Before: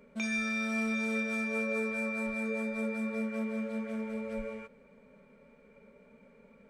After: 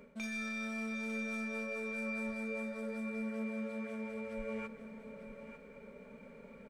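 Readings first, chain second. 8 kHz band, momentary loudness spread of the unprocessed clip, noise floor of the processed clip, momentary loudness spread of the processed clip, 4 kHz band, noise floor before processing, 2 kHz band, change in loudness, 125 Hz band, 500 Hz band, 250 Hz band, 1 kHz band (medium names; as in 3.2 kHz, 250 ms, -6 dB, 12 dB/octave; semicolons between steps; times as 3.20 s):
-6.5 dB, 7 LU, -55 dBFS, 15 LU, -6.0 dB, -60 dBFS, -6.5 dB, -6.5 dB, no reading, -5.0 dB, -5.5 dB, -5.5 dB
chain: tracing distortion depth 0.021 ms; reverse; compression 6:1, threshold -43 dBFS, peak gain reduction 13.5 dB; reverse; delay 899 ms -11 dB; trim +5 dB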